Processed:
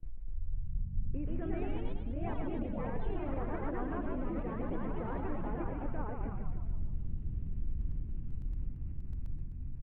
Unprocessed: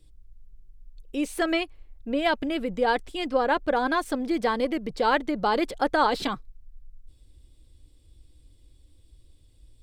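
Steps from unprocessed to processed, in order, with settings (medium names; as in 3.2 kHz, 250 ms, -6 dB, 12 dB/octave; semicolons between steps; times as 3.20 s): CVSD coder 32 kbps; gate with hold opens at -46 dBFS; steep low-pass 2.7 kHz 96 dB/octave; tilt EQ -4 dB/octave; compression, threshold -33 dBFS, peak gain reduction 20 dB; peak limiter -35.5 dBFS, peak gain reduction 12.5 dB; frequency-shifting echo 144 ms, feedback 56%, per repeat -45 Hz, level -4 dB; ever faster or slower copies 256 ms, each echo +2 st, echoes 3; trim +1.5 dB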